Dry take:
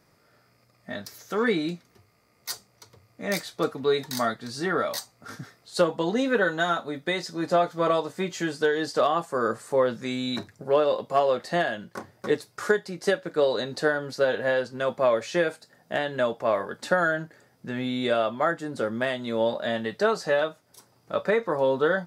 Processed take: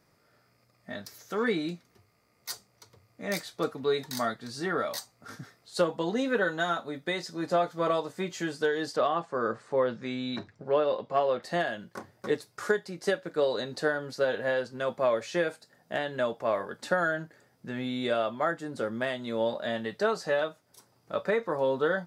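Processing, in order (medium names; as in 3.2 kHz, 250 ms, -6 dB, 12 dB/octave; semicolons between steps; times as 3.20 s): 8.96–11.43 s: low-pass 4.1 kHz 12 dB/octave; trim -4 dB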